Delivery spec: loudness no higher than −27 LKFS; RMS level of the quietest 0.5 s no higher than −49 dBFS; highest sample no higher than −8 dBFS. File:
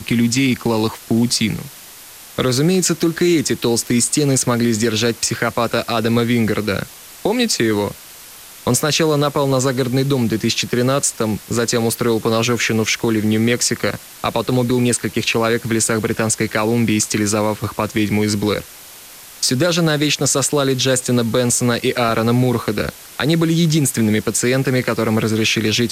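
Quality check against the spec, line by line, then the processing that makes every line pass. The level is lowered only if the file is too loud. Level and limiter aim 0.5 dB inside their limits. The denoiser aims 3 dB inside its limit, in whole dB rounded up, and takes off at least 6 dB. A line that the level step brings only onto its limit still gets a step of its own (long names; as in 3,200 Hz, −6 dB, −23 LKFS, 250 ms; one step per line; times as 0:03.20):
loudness −17.0 LKFS: out of spec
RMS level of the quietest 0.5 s −39 dBFS: out of spec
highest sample −4.5 dBFS: out of spec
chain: level −10.5 dB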